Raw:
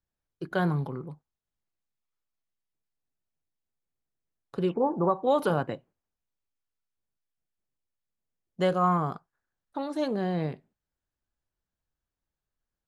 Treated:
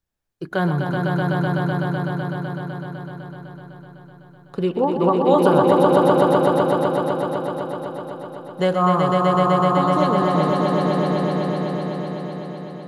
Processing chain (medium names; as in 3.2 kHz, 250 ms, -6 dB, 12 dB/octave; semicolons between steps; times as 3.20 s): echo with a slow build-up 126 ms, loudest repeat 5, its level -3.5 dB; trim +5.5 dB